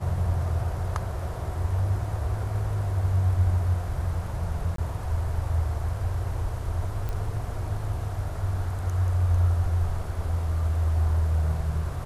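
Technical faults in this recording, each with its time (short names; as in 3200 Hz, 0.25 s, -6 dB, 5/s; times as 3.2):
4.76–4.78 gap 23 ms
7.09 pop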